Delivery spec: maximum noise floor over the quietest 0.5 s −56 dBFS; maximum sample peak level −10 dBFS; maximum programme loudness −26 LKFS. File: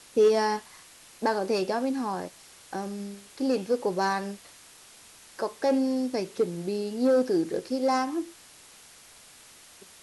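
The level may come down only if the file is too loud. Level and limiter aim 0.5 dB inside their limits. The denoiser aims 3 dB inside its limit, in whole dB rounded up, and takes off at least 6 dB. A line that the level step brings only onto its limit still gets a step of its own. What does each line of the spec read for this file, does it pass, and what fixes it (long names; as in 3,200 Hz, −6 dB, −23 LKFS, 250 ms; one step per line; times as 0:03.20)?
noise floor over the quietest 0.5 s −52 dBFS: out of spec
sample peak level −12.0 dBFS: in spec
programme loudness −28.0 LKFS: in spec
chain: broadband denoise 7 dB, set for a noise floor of −52 dBFS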